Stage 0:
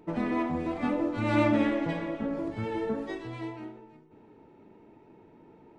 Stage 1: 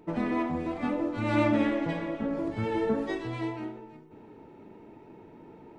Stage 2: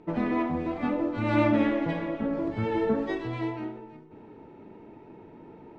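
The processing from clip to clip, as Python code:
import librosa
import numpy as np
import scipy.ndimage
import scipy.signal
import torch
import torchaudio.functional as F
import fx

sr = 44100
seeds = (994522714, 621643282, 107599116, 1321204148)

y1 = fx.rider(x, sr, range_db=5, speed_s=2.0)
y2 = fx.air_absorb(y1, sr, metres=100.0)
y2 = y2 * librosa.db_to_amplitude(2.0)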